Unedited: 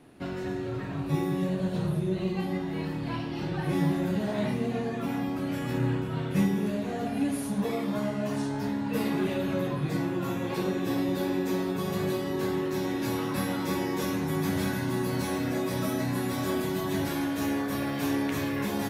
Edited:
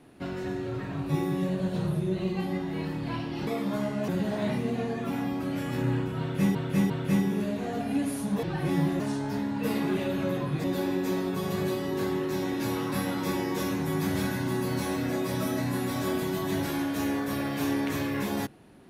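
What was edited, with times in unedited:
3.47–4.04 s: swap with 7.69–8.30 s
6.16–6.51 s: loop, 3 plays
9.94–11.06 s: delete

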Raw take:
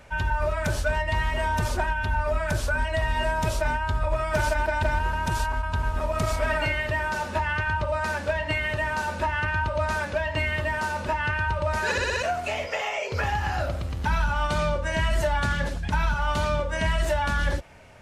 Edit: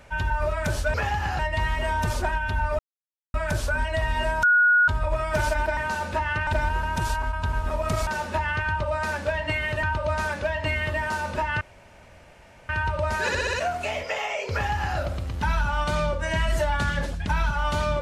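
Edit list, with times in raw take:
2.34 s: insert silence 0.55 s
3.43–3.88 s: bleep 1.45 kHz -14.5 dBFS
6.37–7.08 s: delete
8.84–9.54 s: move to 4.77 s
11.32 s: insert room tone 1.08 s
13.15–13.60 s: copy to 0.94 s

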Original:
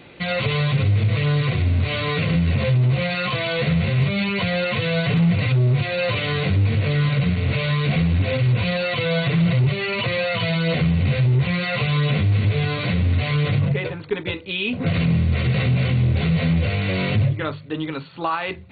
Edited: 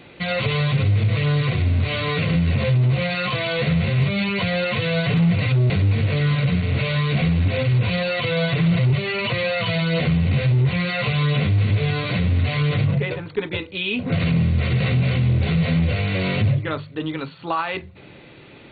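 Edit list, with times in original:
5.70–6.44 s: delete

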